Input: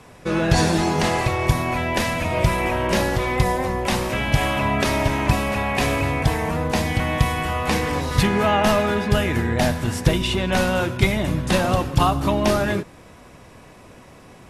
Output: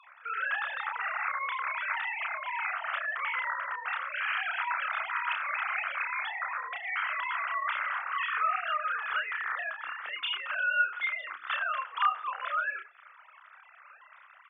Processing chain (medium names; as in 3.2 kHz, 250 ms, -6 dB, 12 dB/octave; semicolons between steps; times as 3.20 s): formants replaced by sine waves; compression 2.5:1, threshold -25 dBFS, peak gain reduction 10.5 dB; ladder high-pass 1.2 kHz, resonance 65%; doubling 31 ms -4 dB; on a send: reverberation RT60 0.70 s, pre-delay 4 ms, DRR 21 dB; on the sum: trim +1.5 dB